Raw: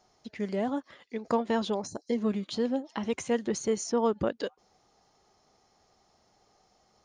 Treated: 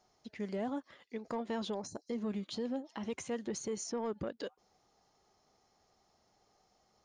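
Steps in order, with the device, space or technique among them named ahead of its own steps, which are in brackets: soft clipper into limiter (soft clip -18 dBFS, distortion -22 dB; limiter -24.5 dBFS, peak gain reduction 5.5 dB); gain -5.5 dB

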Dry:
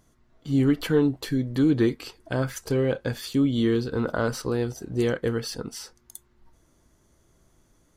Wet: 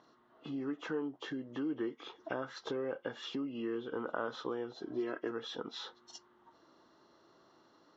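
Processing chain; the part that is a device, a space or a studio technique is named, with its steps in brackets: 4.85–5.31 comb 3 ms, depth 74%; hearing aid with frequency lowering (nonlinear frequency compression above 1900 Hz 1.5:1; compressor 4:1, threshold -38 dBFS, peak gain reduction 18.5 dB; speaker cabinet 320–5100 Hz, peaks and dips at 320 Hz +3 dB, 870 Hz +4 dB, 1200 Hz +6 dB, 2400 Hz -9 dB, 4700 Hz -7 dB); gain +2.5 dB

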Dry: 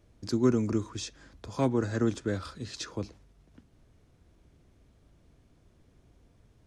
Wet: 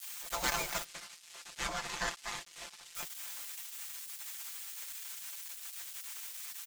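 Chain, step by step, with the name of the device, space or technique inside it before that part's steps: spectral gate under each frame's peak -30 dB weak; budget class-D amplifier (switching dead time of 0.13 ms; switching spikes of -47 dBFS); 0.84–2.95 LPF 6600 Hz 12 dB/oct; comb 5.8 ms; gain +17 dB

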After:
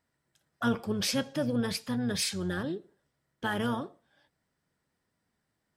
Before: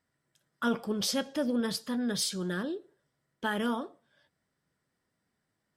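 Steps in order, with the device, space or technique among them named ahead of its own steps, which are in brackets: octave pedal (harmoniser -12 st -8 dB)

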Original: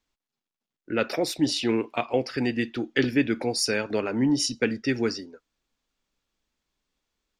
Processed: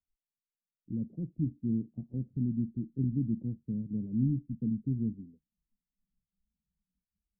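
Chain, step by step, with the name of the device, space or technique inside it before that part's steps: spectral noise reduction 17 dB; the neighbour's flat through the wall (LPF 190 Hz 24 dB/oct; bell 190 Hz +5.5 dB); gain +1.5 dB

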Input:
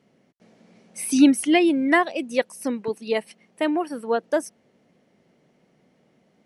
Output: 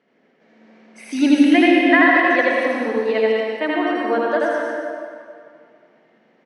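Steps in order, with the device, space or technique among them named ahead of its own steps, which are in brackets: station announcement (BPF 300–3600 Hz; bell 1700 Hz +6.5 dB 0.46 oct; loudspeakers at several distances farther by 28 m -1 dB, 86 m -10 dB; reverb RT60 2.3 s, pre-delay 89 ms, DRR -2 dB)

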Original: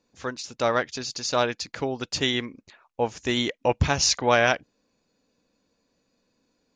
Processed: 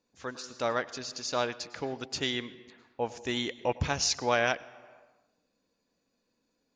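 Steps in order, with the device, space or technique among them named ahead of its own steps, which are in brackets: compressed reverb return (on a send at -7.5 dB: reverb RT60 0.95 s, pre-delay 96 ms + compressor 4:1, threshold -33 dBFS, peak gain reduction 15 dB); on the sum: low shelf 140 Hz -3.5 dB; gain -6.5 dB

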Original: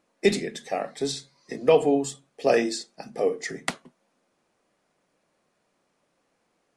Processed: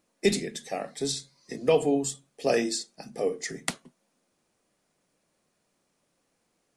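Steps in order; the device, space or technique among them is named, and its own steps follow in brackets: smiley-face EQ (low shelf 170 Hz +4 dB; bell 1000 Hz -3.5 dB 2.9 oct; high shelf 5500 Hz +8 dB); gain -2 dB

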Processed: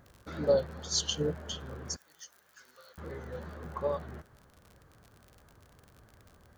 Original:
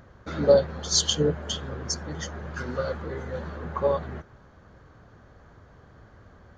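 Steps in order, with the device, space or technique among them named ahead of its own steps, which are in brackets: vinyl LP (wow and flutter; crackle 55/s -35 dBFS; white noise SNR 43 dB); 1.96–2.98 differentiator; gain -8 dB

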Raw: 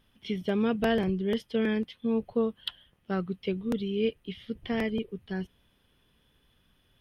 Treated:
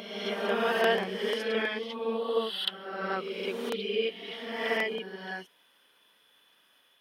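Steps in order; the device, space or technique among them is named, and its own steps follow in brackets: ghost voice (reverse; reverb RT60 1.4 s, pre-delay 28 ms, DRR -1 dB; reverse; HPF 630 Hz 12 dB/oct); gain +3.5 dB

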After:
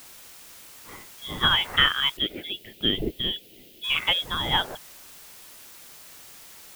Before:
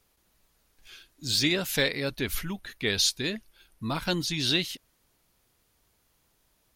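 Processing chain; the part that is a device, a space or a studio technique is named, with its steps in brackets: scrambled radio voice (BPF 320–2900 Hz; inverted band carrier 3600 Hz; white noise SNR 18 dB); 2.17–3.84 EQ curve 130 Hz 0 dB, 370 Hz +10 dB, 630 Hz -2 dB, 1100 Hz -28 dB, 3000 Hz +1 dB, 5800 Hz -11 dB, 8300 Hz -12 dB, 14000 Hz -4 dB; gain +8 dB

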